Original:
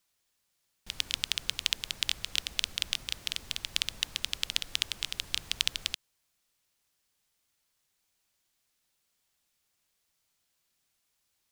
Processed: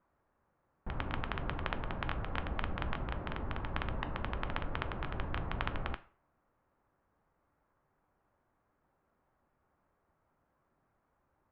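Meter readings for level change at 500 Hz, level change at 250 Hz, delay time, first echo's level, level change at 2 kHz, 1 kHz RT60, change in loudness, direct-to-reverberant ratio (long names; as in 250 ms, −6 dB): +13.5 dB, +13.0 dB, no echo audible, no echo audible, −3.5 dB, 0.45 s, −7.5 dB, 11.0 dB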